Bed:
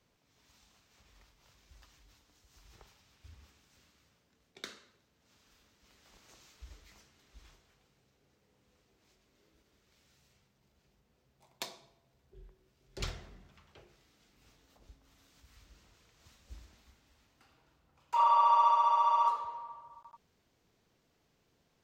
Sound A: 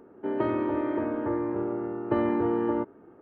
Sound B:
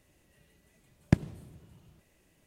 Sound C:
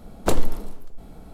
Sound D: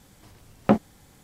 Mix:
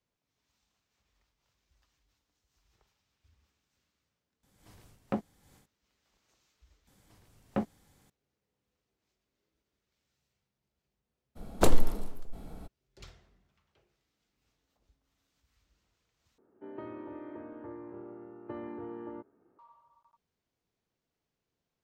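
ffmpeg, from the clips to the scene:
-filter_complex "[4:a]asplit=2[s0][s1];[0:a]volume=0.224[s2];[s0]dynaudnorm=f=140:g=3:m=3.98[s3];[s1]acontrast=75[s4];[s2]asplit=4[s5][s6][s7][s8];[s5]atrim=end=4.434[s9];[s3]atrim=end=1.23,asetpts=PTS-STARTPTS,volume=0.15[s10];[s6]atrim=start=5.656:end=6.874[s11];[s4]atrim=end=1.23,asetpts=PTS-STARTPTS,volume=0.133[s12];[s7]atrim=start=8.096:end=16.384[s13];[1:a]atrim=end=3.21,asetpts=PTS-STARTPTS,volume=0.158[s14];[s8]atrim=start=19.586[s15];[3:a]atrim=end=1.33,asetpts=PTS-STARTPTS,volume=0.75,afade=t=in:d=0.02,afade=t=out:st=1.31:d=0.02,adelay=11350[s16];[s9][s10]acrossfade=d=0.004:c1=hsin:c2=hsin[s17];[s17][s11]acrossfade=d=0.004:c1=hsin:c2=hsin[s18];[s18][s12]acrossfade=d=0.004:c1=hsin:c2=hsin[s19];[s19][s13]acrossfade=d=0.004:c1=hsin:c2=hsin[s20];[s20][s14]acrossfade=d=0.004:c1=hsin:c2=hsin[s21];[s21][s15]acrossfade=d=0.004:c1=hsin:c2=hsin[s22];[s22][s16]amix=inputs=2:normalize=0"

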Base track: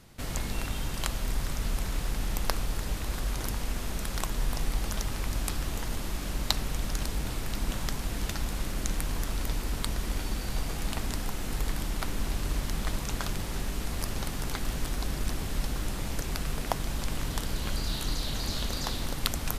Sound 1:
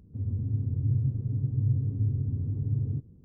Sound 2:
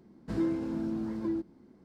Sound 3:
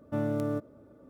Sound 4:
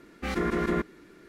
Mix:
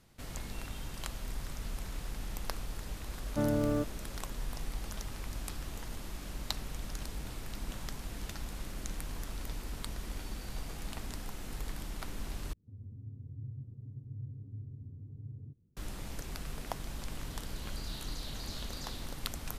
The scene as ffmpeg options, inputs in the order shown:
-filter_complex "[0:a]volume=0.355,asplit=2[s0][s1];[s0]atrim=end=12.534[s2];[1:a]atrim=end=3.24,asetpts=PTS-STARTPTS,volume=0.141[s3];[s1]atrim=start=15.766[s4];[3:a]atrim=end=1.09,asetpts=PTS-STARTPTS,afade=t=in:d=0.004:c=hsin,afade=t=out:st=1.086:d=0.004:c=hsin,adelay=3240[s5];[s2][s3]acrossfade=d=0.004:c1=hsin:c2=hsin[s6];[s6][s4]acrossfade=d=0.004:c1=hsin:c2=hsin[s7];[s7][s5]amix=inputs=2:normalize=0"

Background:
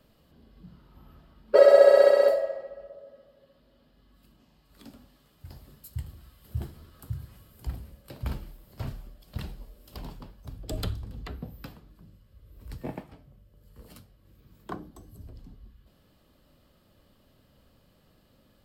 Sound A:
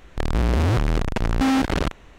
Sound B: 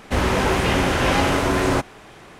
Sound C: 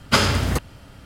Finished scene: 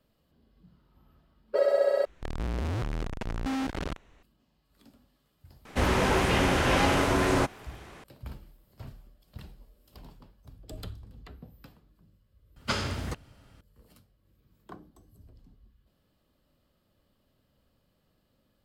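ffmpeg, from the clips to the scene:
-filter_complex "[0:a]volume=0.355[s0];[3:a]acrossover=split=8400[s1][s2];[s2]acompressor=threshold=0.00794:ratio=4:attack=1:release=60[s3];[s1][s3]amix=inputs=2:normalize=0[s4];[s0]asplit=2[s5][s6];[s5]atrim=end=2.054[s7];[1:a]atrim=end=2.18,asetpts=PTS-STARTPTS,volume=0.266[s8];[s6]atrim=start=4.226[s9];[2:a]atrim=end=2.39,asetpts=PTS-STARTPTS,volume=0.562,afade=t=in:d=0.004:c=hsin,afade=t=out:st=2.386:d=0.004:c=hsin,adelay=249165S[s10];[s4]atrim=end=1.05,asetpts=PTS-STARTPTS,volume=0.237,afade=t=in:d=0.004:c=hsin,afade=t=out:st=1.046:d=0.004:c=hsin,adelay=12560[s11];[s7][s8]acrossfade=d=0.004:c1=hsin:c2=hsin[s12];[s12][s9]acrossfade=d=0.004:c1=hsin:c2=hsin[s13];[s13][s10][s11]amix=inputs=3:normalize=0"

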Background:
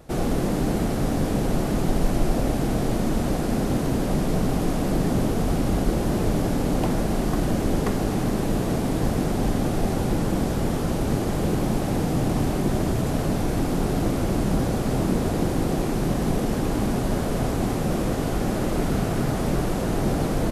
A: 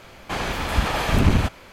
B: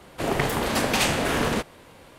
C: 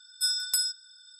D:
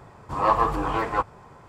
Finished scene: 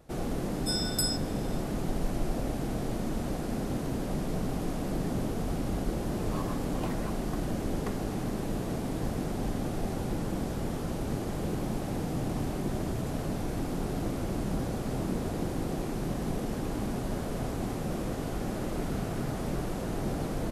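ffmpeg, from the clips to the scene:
-filter_complex "[0:a]volume=0.355[s0];[3:a]dynaudnorm=f=160:g=3:m=3.55[s1];[4:a]aderivative[s2];[s1]atrim=end=1.19,asetpts=PTS-STARTPTS,volume=0.2,afade=t=in:d=0.004:c=hsin,afade=t=out:st=1.186:d=0.004:c=hsin,adelay=450[s3];[s2]atrim=end=1.68,asetpts=PTS-STARTPTS,volume=0.531,afade=t=in:d=0.004:c=hsin,afade=t=out:st=1.676:d=0.004:c=hsin,adelay=259749S[s4];[s0][s3][s4]amix=inputs=3:normalize=0"

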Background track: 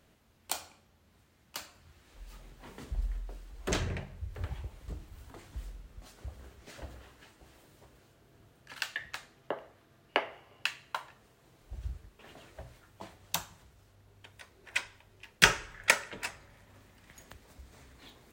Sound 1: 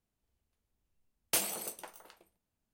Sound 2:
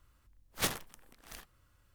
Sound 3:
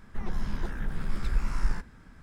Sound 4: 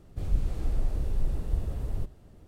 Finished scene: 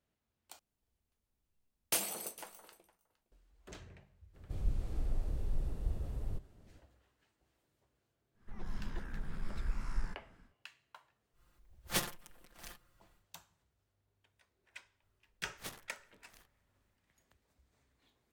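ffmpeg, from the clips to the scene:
-filter_complex "[2:a]asplit=2[s0][s1];[0:a]volume=0.1[s2];[1:a]aecho=1:1:462:0.0841[s3];[3:a]dynaudnorm=f=100:g=5:m=2.24[s4];[s0]aecho=1:1:5.7:0.77[s5];[s2]asplit=2[s6][s7];[s6]atrim=end=0.594[s8];[s3]atrim=end=2.73,asetpts=PTS-STARTPTS,volume=0.75[s9];[s7]atrim=start=3.316[s10];[4:a]atrim=end=2.47,asetpts=PTS-STARTPTS,volume=0.422,afade=t=in:d=0.02,afade=t=out:st=2.45:d=0.02,adelay=190953S[s11];[s4]atrim=end=2.22,asetpts=PTS-STARTPTS,volume=0.15,afade=t=in:d=0.1,afade=t=out:st=2.12:d=0.1,adelay=8330[s12];[s5]atrim=end=1.94,asetpts=PTS-STARTPTS,volume=0.668,afade=t=in:d=0.1,afade=t=out:st=1.84:d=0.1,adelay=11320[s13];[s1]atrim=end=1.94,asetpts=PTS-STARTPTS,volume=0.2,afade=t=in:d=0.004:c=hsin,afade=t=out:st=1.936:d=0.004:c=hsin,adelay=15020[s14];[s8][s9]acrossfade=d=0.004:c1=hsin:c2=hsin[s15];[s15][s10]acrossfade=d=0.004:c1=hsin:c2=hsin[s16];[s16][s11][s12][s13][s14]amix=inputs=5:normalize=0"

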